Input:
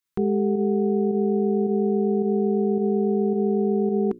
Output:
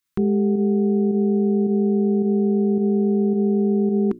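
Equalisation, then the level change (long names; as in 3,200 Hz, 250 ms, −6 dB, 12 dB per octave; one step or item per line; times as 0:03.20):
flat-topped bell 610 Hz −8.5 dB 1.2 octaves
+4.5 dB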